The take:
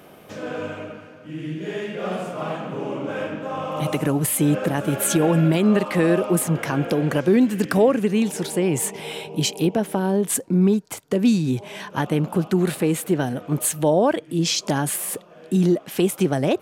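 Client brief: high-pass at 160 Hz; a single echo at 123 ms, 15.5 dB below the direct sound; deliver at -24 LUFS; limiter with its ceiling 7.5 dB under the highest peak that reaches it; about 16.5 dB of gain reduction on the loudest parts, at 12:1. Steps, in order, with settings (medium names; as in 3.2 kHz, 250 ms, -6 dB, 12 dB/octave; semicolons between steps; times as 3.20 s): high-pass 160 Hz; compression 12:1, threshold -30 dBFS; peak limiter -25 dBFS; delay 123 ms -15.5 dB; trim +11 dB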